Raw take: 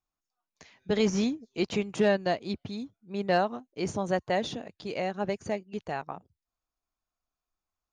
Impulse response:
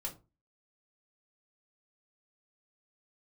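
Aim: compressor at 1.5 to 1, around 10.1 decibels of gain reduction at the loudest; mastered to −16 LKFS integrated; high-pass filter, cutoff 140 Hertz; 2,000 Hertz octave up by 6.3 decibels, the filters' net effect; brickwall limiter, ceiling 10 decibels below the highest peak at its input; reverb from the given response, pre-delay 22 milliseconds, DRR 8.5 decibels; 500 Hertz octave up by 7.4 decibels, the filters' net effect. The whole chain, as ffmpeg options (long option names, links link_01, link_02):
-filter_complex "[0:a]highpass=140,equalizer=frequency=500:width_type=o:gain=9,equalizer=frequency=2000:width_type=o:gain=7,acompressor=threshold=-43dB:ratio=1.5,alimiter=level_in=3.5dB:limit=-24dB:level=0:latency=1,volume=-3.5dB,asplit=2[link_01][link_02];[1:a]atrim=start_sample=2205,adelay=22[link_03];[link_02][link_03]afir=irnorm=-1:irlink=0,volume=-8dB[link_04];[link_01][link_04]amix=inputs=2:normalize=0,volume=22dB"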